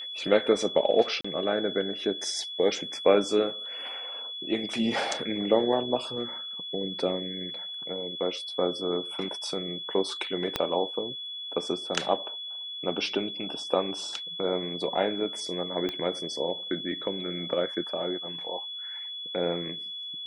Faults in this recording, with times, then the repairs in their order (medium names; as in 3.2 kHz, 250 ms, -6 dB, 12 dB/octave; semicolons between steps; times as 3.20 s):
whine 3.4 kHz -35 dBFS
1.21–1.25 s: dropout 35 ms
10.56 s: pop -11 dBFS
15.89 s: pop -18 dBFS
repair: de-click; band-stop 3.4 kHz, Q 30; interpolate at 1.21 s, 35 ms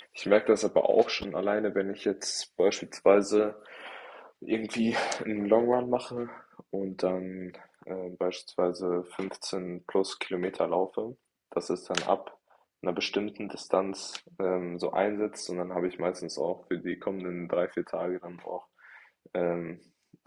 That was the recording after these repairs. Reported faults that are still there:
10.56 s: pop
15.89 s: pop